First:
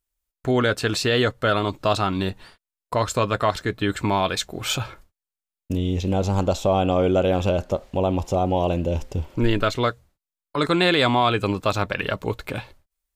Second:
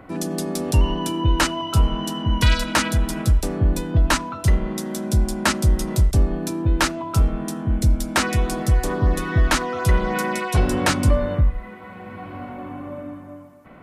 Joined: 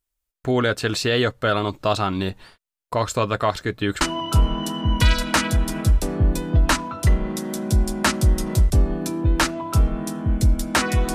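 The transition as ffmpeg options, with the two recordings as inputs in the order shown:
ffmpeg -i cue0.wav -i cue1.wav -filter_complex "[0:a]apad=whole_dur=11.14,atrim=end=11.14,atrim=end=4.012[link_01];[1:a]atrim=start=1.418:end=8.55[link_02];[link_01][link_02]acrossfade=duration=0.004:curve1=hsin:curve2=hsin" out.wav

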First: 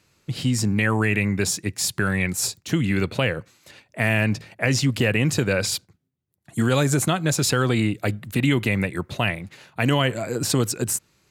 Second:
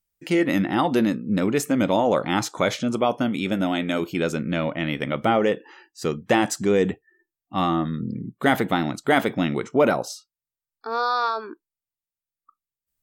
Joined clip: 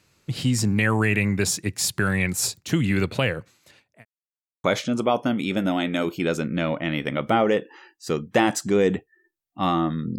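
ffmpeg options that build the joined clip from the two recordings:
ffmpeg -i cue0.wav -i cue1.wav -filter_complex "[0:a]apad=whole_dur=10.18,atrim=end=10.18,asplit=2[link_01][link_02];[link_01]atrim=end=4.05,asetpts=PTS-STARTPTS,afade=type=out:start_time=2.96:duration=1.09:curve=qsin[link_03];[link_02]atrim=start=4.05:end=4.64,asetpts=PTS-STARTPTS,volume=0[link_04];[1:a]atrim=start=2.59:end=8.13,asetpts=PTS-STARTPTS,afade=type=in:duration=0.004:curve=hsin[link_05];[link_03][link_04][link_05]concat=n=3:v=0:a=1" out.wav

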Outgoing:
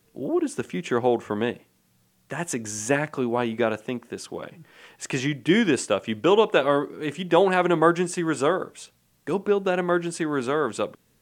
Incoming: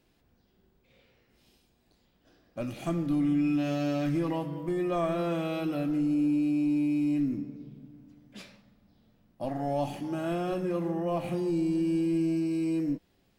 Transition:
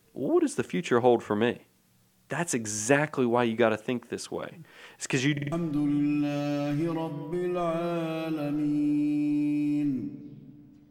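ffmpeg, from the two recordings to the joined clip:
ffmpeg -i cue0.wav -i cue1.wav -filter_complex "[0:a]apad=whole_dur=10.9,atrim=end=10.9,asplit=4[link_01][link_02][link_03][link_04];[link_01]atrim=end=5.372[link_05];[link_02]atrim=start=5.318:end=5.372[link_06];[link_03]atrim=start=5.318:end=5.372[link_07];[link_04]atrim=start=5.318:end=5.372[link_08];[1:a]atrim=start=2.868:end=8.25[link_09];[link_05][link_06]acrossfade=duration=0.004:curve1=hsin:curve2=hsin[link_10];[link_10][link_07]acrossfade=duration=0.004:curve1=hsin:curve2=hsin[link_11];[link_11][link_08]acrossfade=duration=0.004:curve1=hsin:curve2=hsin[link_12];[link_12][link_09]acrossfade=duration=0.004:curve1=hsin:curve2=hsin" out.wav

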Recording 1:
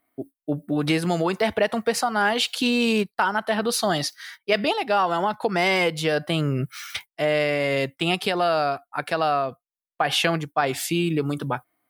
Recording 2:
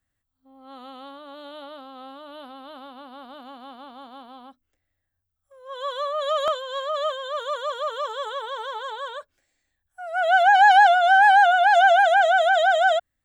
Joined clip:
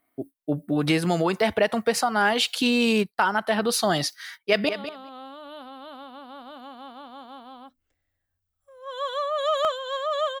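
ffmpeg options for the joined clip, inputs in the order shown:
ffmpeg -i cue0.wav -i cue1.wav -filter_complex "[0:a]apad=whole_dur=10.4,atrim=end=10.4,atrim=end=4.692[link_01];[1:a]atrim=start=1.518:end=7.23[link_02];[link_01][link_02]acrossfade=duration=0.004:curve1=hsin:curve2=hsin,asplit=2[link_03][link_04];[link_04]afade=type=in:start_time=4.29:duration=0.01,afade=type=out:start_time=4.69:duration=0.01,aecho=0:1:200|400:0.298538|0.0298538[link_05];[link_03][link_05]amix=inputs=2:normalize=0" out.wav

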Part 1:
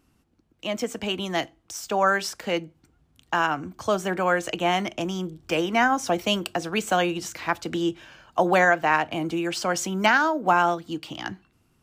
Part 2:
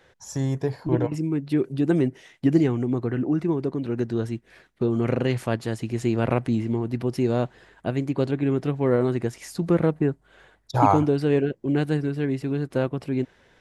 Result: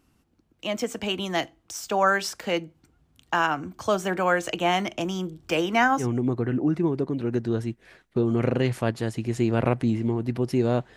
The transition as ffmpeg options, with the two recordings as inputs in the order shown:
ffmpeg -i cue0.wav -i cue1.wav -filter_complex "[0:a]apad=whole_dur=10.96,atrim=end=10.96,atrim=end=6.07,asetpts=PTS-STARTPTS[link_01];[1:a]atrim=start=2.62:end=7.61,asetpts=PTS-STARTPTS[link_02];[link_01][link_02]acrossfade=duration=0.1:curve1=tri:curve2=tri" out.wav

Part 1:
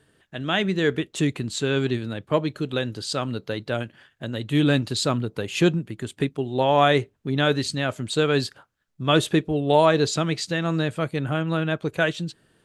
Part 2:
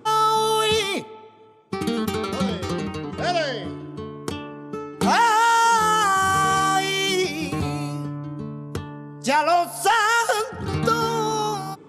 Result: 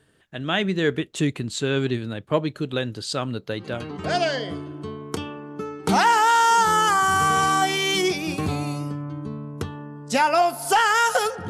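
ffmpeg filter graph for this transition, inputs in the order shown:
ffmpeg -i cue0.wav -i cue1.wav -filter_complex "[0:a]apad=whole_dur=11.49,atrim=end=11.49,atrim=end=4.06,asetpts=PTS-STARTPTS[link_01];[1:a]atrim=start=2.7:end=10.63,asetpts=PTS-STARTPTS[link_02];[link_01][link_02]acrossfade=duration=0.5:curve1=tri:curve2=tri" out.wav

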